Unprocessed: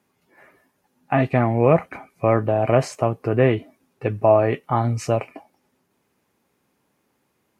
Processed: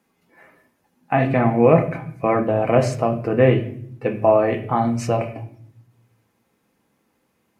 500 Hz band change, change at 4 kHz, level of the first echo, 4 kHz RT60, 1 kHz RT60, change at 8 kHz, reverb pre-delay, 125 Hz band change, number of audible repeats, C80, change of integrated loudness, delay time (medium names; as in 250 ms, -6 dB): +1.5 dB, +1.0 dB, no echo, 0.50 s, 0.50 s, 0.0 dB, 4 ms, 0.0 dB, no echo, 15.0 dB, +1.0 dB, no echo